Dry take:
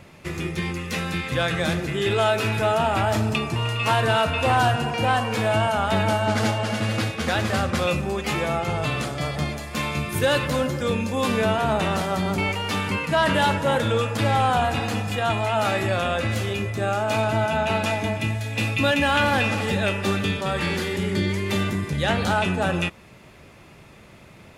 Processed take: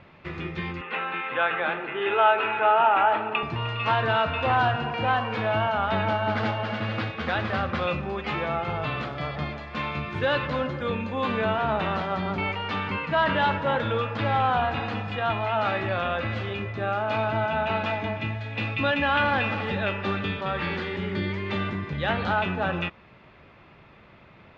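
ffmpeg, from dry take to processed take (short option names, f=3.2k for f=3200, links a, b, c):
-filter_complex "[0:a]asettb=1/sr,asplit=3[a][b][c];[a]atrim=end=0.814[d];[b]atrim=start=0.81:end=3.43,asetpts=PTS-STARTPTS,afade=t=in:d=0.004:c=qsin,afade=t=out:st=2.616:d=0.004:c=qsin,highpass=360,equalizer=f=410:t=q:w=4:g=4,equalizer=f=860:t=q:w=4:g=8,equalizer=f=1.4k:t=q:w=4:g=6,equalizer=f=2.7k:t=q:w=4:g=5,lowpass=f=3.1k:w=0.5412,lowpass=f=3.1k:w=1.3066[e];[c]atrim=start=3.426[f];[d][e]acrossfade=d=0.004:c1=hsin:c2=qsin[g];[g][f]acrossfade=d=0.004:c1=qsin:c2=hsin,asettb=1/sr,asplit=3[h][i][j];[h]atrim=end=10.734[k];[i]atrim=start=10.73:end=11.54,asetpts=PTS-STARTPTS,afade=t=in:d=0.004:c=qsin,afade=t=out:st=0.806:d=0.004:c=qsin,bandreject=f=5.3k:w=6.8[l];[j]atrim=start=11.536[m];[k][l]acrossfade=d=0.004:c1=hsin:c2=qsin[n];[n][m]acrossfade=d=0.004:c1=qsin:c2=hsin,lowpass=f=3.9k:w=0.5412,lowpass=f=3.9k:w=1.3066,equalizer=f=1.2k:t=o:w=1.5:g=5,volume=-5.5dB"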